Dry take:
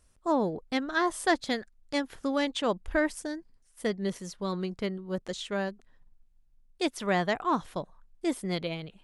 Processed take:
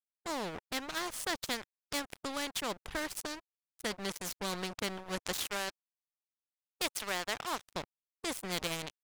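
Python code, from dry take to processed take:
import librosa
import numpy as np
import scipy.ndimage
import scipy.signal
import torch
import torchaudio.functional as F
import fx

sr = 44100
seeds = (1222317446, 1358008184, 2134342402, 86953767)

y = fx.highpass(x, sr, hz=500.0, slope=12, at=(5.37, 7.68))
y = np.sign(y) * np.maximum(np.abs(y) - 10.0 ** (-41.5 / 20.0), 0.0)
y = fx.rider(y, sr, range_db=10, speed_s=0.5)
y = fx.spectral_comp(y, sr, ratio=2.0)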